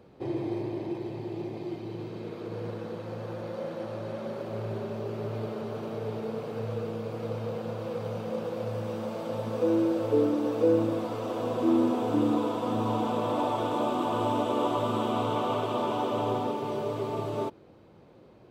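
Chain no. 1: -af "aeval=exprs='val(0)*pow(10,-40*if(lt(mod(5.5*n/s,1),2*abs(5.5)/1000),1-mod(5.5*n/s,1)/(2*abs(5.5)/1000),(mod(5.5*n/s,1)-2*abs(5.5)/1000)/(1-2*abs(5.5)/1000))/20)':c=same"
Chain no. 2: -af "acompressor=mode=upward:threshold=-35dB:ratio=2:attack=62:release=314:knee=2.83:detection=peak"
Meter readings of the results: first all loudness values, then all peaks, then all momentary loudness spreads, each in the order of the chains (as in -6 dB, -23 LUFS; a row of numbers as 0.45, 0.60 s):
-40.0, -30.5 LUFS; -15.0, -13.0 dBFS; 12, 11 LU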